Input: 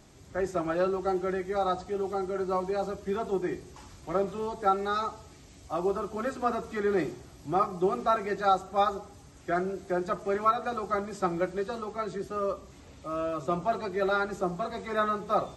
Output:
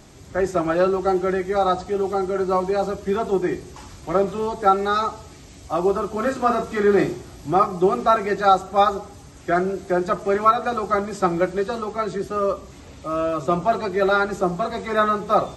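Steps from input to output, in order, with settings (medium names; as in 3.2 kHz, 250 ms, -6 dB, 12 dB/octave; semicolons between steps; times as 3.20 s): 6.18–7.51 s: doubling 34 ms -6.5 dB; trim +8.5 dB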